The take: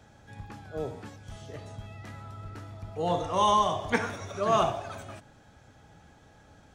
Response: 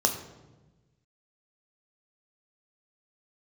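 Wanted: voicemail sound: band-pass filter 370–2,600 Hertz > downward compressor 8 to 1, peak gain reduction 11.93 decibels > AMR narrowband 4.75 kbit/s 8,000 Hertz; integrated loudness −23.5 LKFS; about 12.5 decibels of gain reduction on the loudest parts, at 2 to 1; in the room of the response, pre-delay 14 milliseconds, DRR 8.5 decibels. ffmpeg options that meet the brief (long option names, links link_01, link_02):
-filter_complex "[0:a]acompressor=threshold=-43dB:ratio=2,asplit=2[link_01][link_02];[1:a]atrim=start_sample=2205,adelay=14[link_03];[link_02][link_03]afir=irnorm=-1:irlink=0,volume=-19dB[link_04];[link_01][link_04]amix=inputs=2:normalize=0,highpass=370,lowpass=2600,acompressor=threshold=-43dB:ratio=8,volume=28dB" -ar 8000 -c:a libopencore_amrnb -b:a 4750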